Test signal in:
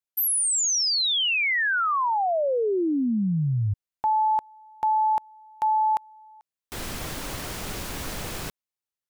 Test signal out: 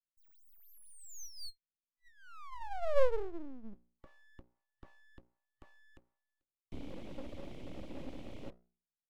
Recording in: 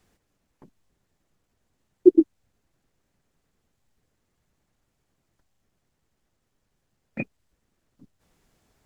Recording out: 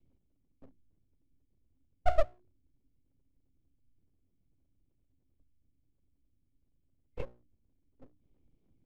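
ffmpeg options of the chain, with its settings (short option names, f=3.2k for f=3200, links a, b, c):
-filter_complex "[0:a]bandreject=f=60:t=h:w=6,bandreject=f=120:t=h:w=6,bandreject=f=180:t=h:w=6,bandreject=f=240:t=h:w=6,bandreject=f=300:t=h:w=6,bandreject=f=360:t=h:w=6,bandreject=f=420:t=h:w=6,bandreject=f=480:t=h:w=6,bandreject=f=540:t=h:w=6,afftfilt=real='re*(1-between(b*sr/4096,990,2100))':imag='im*(1-between(b*sr/4096,990,2100))':win_size=4096:overlap=0.75,highshelf=f=1.5k:t=q:w=1.5:g=-11.5,acrossover=split=130[a][b];[a]acompressor=threshold=-50dB:ratio=8:attack=85:release=680:detection=peak[c];[b]asplit=3[d][e][f];[d]bandpass=f=270:t=q:w=8,volume=0dB[g];[e]bandpass=f=2.29k:t=q:w=8,volume=-6dB[h];[f]bandpass=f=3.01k:t=q:w=8,volume=-9dB[i];[g][h][i]amix=inputs=3:normalize=0[j];[c][j]amix=inputs=2:normalize=0,aeval=exprs='abs(val(0))':c=same,volume=4.5dB"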